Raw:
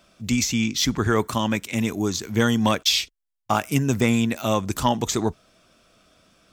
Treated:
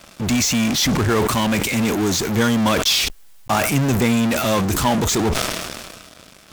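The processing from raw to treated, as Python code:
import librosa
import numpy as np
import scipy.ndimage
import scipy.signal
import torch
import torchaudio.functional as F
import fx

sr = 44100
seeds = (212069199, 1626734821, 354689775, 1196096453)

p1 = fx.fuzz(x, sr, gain_db=46.0, gate_db=-55.0)
p2 = x + (p1 * 10.0 ** (-7.0 / 20.0))
p3 = fx.sustainer(p2, sr, db_per_s=33.0)
y = p3 * 10.0 ** (-2.5 / 20.0)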